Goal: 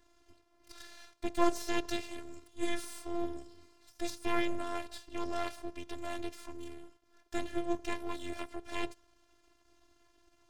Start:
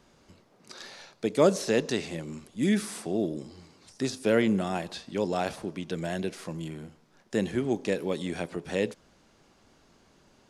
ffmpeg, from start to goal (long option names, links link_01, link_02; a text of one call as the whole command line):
ffmpeg -i in.wav -af "aeval=exprs='max(val(0),0)':channel_layout=same,afftfilt=real='hypot(re,im)*cos(PI*b)':imag='0':win_size=512:overlap=0.75" out.wav